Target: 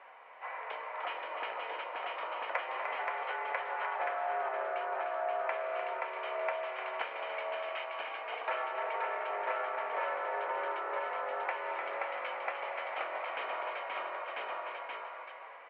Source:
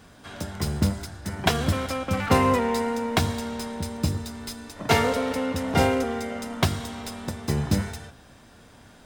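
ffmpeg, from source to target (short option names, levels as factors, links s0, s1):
-filter_complex "[0:a]aeval=exprs='val(0)+0.0158*(sin(2*PI*50*n/s)+sin(2*PI*2*50*n/s)/2+sin(2*PI*3*50*n/s)/3+sin(2*PI*4*50*n/s)/4+sin(2*PI*5*50*n/s)/5)':c=same,asplit=2[s0][s1];[s1]aecho=0:1:573:0.631[s2];[s0][s2]amix=inputs=2:normalize=0,asetrate=25442,aresample=44100,highpass=f=500:t=q:w=0.5412,highpass=f=500:t=q:w=1.307,lowpass=f=2400:t=q:w=0.5176,lowpass=f=2400:t=q:w=0.7071,lowpass=f=2400:t=q:w=1.932,afreqshift=110,acompressor=threshold=0.0112:ratio=4,asplit=2[s3][s4];[s4]aecho=0:1:301|527:0.422|0.668[s5];[s3][s5]amix=inputs=2:normalize=0,volume=1.41"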